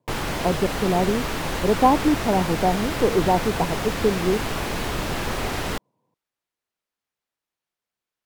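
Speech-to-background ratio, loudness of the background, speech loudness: 4.0 dB, -27.0 LUFS, -23.0 LUFS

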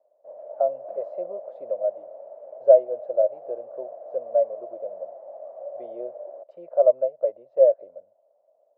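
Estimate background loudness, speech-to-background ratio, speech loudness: -41.0 LUFS, 18.0 dB, -23.0 LUFS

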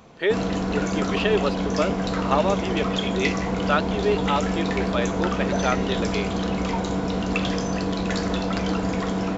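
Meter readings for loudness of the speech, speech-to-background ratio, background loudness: -27.0 LUFS, -1.5 dB, -25.5 LUFS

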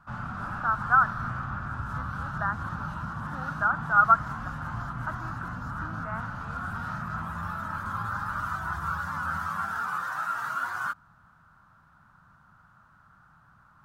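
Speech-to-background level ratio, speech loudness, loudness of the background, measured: 7.5 dB, -26.0 LUFS, -33.5 LUFS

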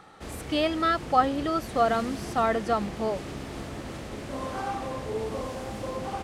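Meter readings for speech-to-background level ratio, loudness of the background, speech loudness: 9.5 dB, -36.0 LUFS, -26.5 LUFS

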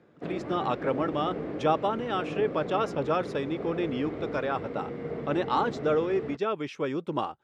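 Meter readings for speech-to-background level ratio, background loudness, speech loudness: 6.5 dB, -36.5 LUFS, -30.0 LUFS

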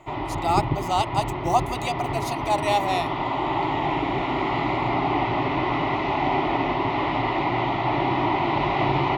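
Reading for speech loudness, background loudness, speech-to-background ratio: -26.0 LUFS, -25.0 LUFS, -1.0 dB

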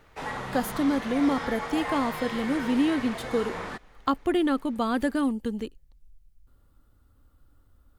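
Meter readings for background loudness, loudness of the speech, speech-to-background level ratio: -34.5 LUFS, -27.5 LUFS, 7.0 dB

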